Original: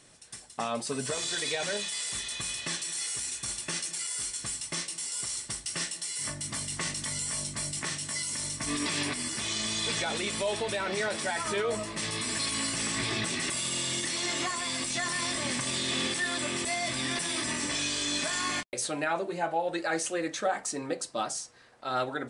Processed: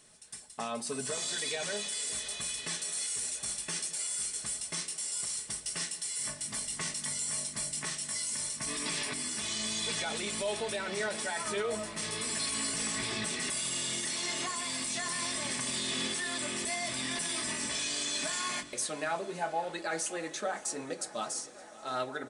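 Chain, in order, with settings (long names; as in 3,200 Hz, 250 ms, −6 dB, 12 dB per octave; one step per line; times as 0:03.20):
high-shelf EQ 9,500 Hz +9.5 dB
comb filter 4.7 ms, depth 31%
hum removal 48.37 Hz, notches 8
tape delay 563 ms, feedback 85%, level −18 dB, low-pass 5,100 Hz
on a send at −19 dB: convolution reverb RT60 5.9 s, pre-delay 88 ms
on the sum: level −5 dB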